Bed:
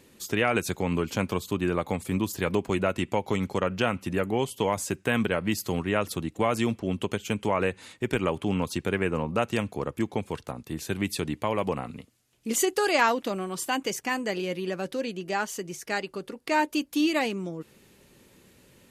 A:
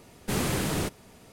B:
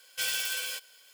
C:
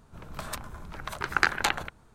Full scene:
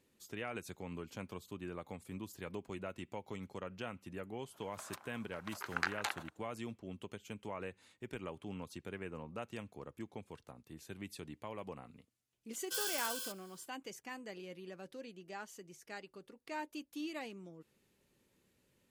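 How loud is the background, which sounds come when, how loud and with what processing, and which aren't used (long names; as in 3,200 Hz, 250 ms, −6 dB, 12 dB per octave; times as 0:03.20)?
bed −18 dB
0:04.40: mix in C −12 dB + high-pass filter 490 Hz
0:12.53: mix in B −5 dB + phaser with its sweep stopped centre 440 Hz, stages 8
not used: A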